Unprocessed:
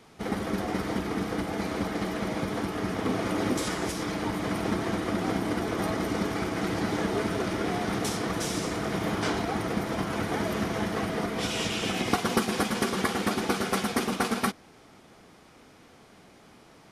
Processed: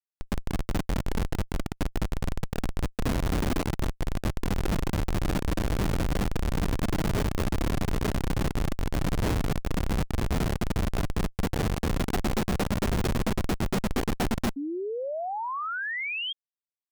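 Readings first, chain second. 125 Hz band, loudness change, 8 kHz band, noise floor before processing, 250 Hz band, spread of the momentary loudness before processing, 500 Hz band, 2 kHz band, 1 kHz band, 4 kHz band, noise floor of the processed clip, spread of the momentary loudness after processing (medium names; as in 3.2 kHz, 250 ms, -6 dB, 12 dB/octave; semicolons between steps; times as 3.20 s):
+6.0 dB, -0.5 dB, -3.5 dB, -55 dBFS, -1.5 dB, 3 LU, -2.5 dB, -2.0 dB, -3.0 dB, -3.0 dB, -74 dBFS, 4 LU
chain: sorted samples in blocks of 8 samples; high-order bell 1.5 kHz -13 dB 1.1 oct; Schmitt trigger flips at -23 dBFS; painted sound rise, 14.56–16.33 s, 270–3300 Hz -37 dBFS; trim +5.5 dB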